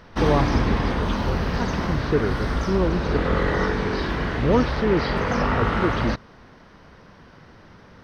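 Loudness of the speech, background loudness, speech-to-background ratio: −27.0 LKFS, −24.5 LKFS, −2.5 dB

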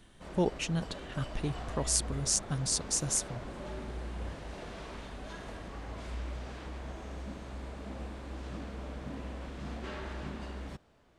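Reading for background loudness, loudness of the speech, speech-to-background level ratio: −43.0 LKFS, −32.0 LKFS, 11.0 dB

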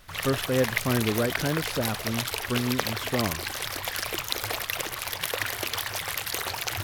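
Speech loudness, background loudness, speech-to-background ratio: −29.0 LKFS, −29.5 LKFS, 0.5 dB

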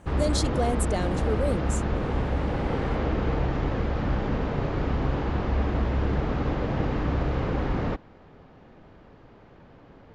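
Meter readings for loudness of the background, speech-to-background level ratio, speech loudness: −27.5 LKFS, −2.5 dB, −30.0 LKFS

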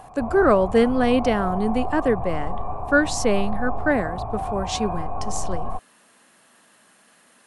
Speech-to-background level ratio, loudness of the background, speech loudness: 8.5 dB, −31.0 LKFS, −22.5 LKFS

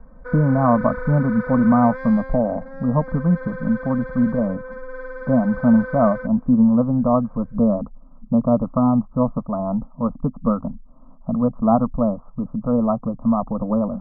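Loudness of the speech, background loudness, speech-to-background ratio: −20.0 LKFS, −33.0 LKFS, 13.0 dB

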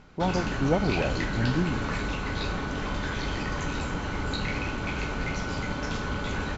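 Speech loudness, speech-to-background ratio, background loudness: −29.0 LKFS, 2.0 dB, −31.0 LKFS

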